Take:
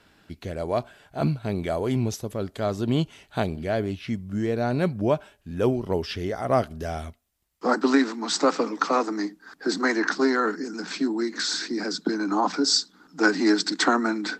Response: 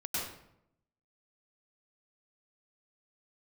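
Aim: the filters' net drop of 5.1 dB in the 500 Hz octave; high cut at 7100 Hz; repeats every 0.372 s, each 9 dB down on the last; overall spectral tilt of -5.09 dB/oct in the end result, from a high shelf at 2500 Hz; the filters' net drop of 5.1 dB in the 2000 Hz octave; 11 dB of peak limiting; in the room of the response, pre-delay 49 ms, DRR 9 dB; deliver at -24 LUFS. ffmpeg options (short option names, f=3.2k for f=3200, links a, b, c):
-filter_complex "[0:a]lowpass=7.1k,equalizer=f=500:t=o:g=-6.5,equalizer=f=2k:t=o:g=-4,highshelf=f=2.5k:g=-6.5,alimiter=limit=-20.5dB:level=0:latency=1,aecho=1:1:372|744|1116|1488:0.355|0.124|0.0435|0.0152,asplit=2[a][b];[1:a]atrim=start_sample=2205,adelay=49[c];[b][c]afir=irnorm=-1:irlink=0,volume=-13.5dB[d];[a][d]amix=inputs=2:normalize=0,volume=6.5dB"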